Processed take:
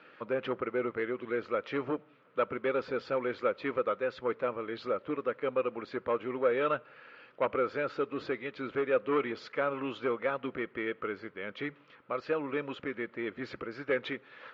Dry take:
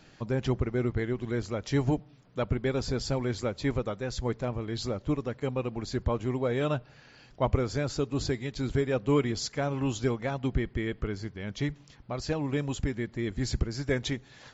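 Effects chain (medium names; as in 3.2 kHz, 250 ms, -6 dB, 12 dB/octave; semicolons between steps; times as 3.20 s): saturation -22.5 dBFS, distortion -14 dB; cabinet simulation 370–3000 Hz, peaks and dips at 510 Hz +7 dB, 740 Hz -8 dB, 1.3 kHz +10 dB, 2.4 kHz +3 dB; trim +1 dB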